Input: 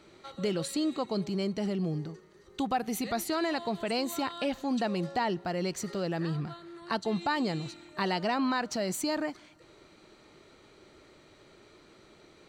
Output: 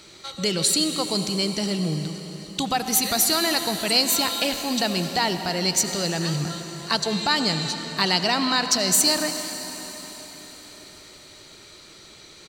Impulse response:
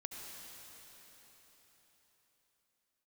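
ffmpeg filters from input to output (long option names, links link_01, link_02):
-filter_complex "[0:a]firequalizer=gain_entry='entry(160,0);entry(240,-4);entry(4500,12)':delay=0.05:min_phase=1,asplit=2[link_01][link_02];[1:a]atrim=start_sample=2205,asetrate=41454,aresample=44100[link_03];[link_02][link_03]afir=irnorm=-1:irlink=0,volume=0.5dB[link_04];[link_01][link_04]amix=inputs=2:normalize=0,volume=2.5dB"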